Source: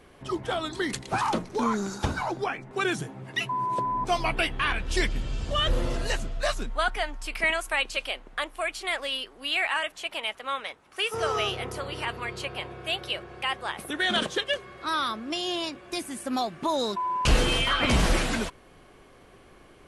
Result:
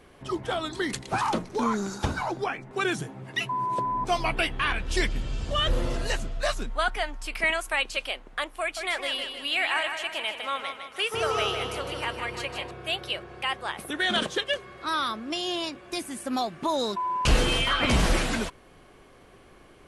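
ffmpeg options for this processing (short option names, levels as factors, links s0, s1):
-filter_complex "[0:a]asettb=1/sr,asplit=3[s0][s1][s2];[s0]atrim=end=8.614[s3];[s1]atrim=start=8.61:end=12.71,asetpts=PTS-STARTPTS,afade=t=in:d=0.004:c=qsin,afade=t=out:st=4.096:d=0.004:c=qsin,aecho=1:1:156|312|468|624|780|936:0.447|0.228|0.116|0.0593|0.0302|0.0154,atrim=end_sample=180810[s4];[s2]atrim=start=12.706[s5];[s3][s4]acrossfade=d=0.004:c1=hsin:c2=qsin[s6];[s6][s5]acrossfade=d=0.004:c1=qsin:c2=hsin"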